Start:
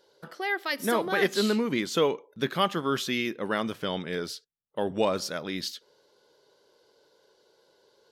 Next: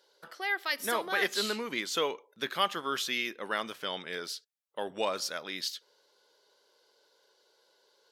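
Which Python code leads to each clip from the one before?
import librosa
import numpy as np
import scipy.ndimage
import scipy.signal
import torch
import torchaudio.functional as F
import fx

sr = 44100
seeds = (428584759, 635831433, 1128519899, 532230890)

y = fx.highpass(x, sr, hz=1000.0, slope=6)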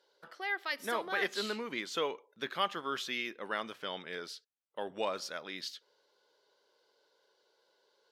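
y = fx.high_shelf(x, sr, hz=6200.0, db=-11.0)
y = y * 10.0 ** (-3.0 / 20.0)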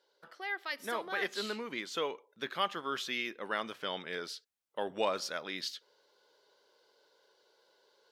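y = fx.rider(x, sr, range_db=4, speed_s=2.0)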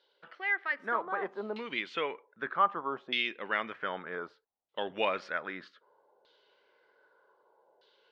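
y = fx.filter_lfo_lowpass(x, sr, shape='saw_down', hz=0.64, low_hz=720.0, high_hz=3600.0, q=2.7)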